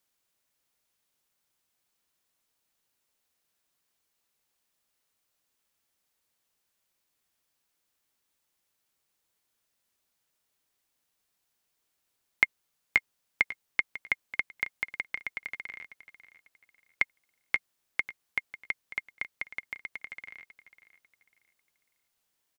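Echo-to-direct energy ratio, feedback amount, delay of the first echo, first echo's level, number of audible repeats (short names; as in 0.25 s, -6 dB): -15.0 dB, 29%, 0.546 s, -15.5 dB, 2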